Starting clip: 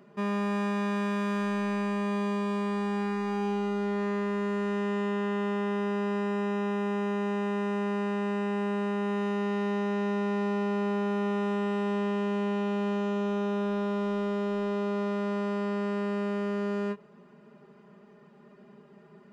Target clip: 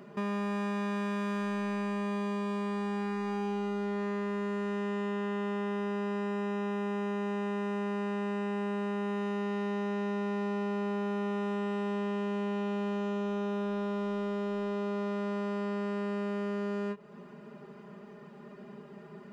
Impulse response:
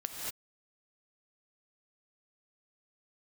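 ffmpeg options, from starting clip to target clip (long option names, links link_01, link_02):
-af "acompressor=threshold=-41dB:ratio=2.5,volume=5.5dB"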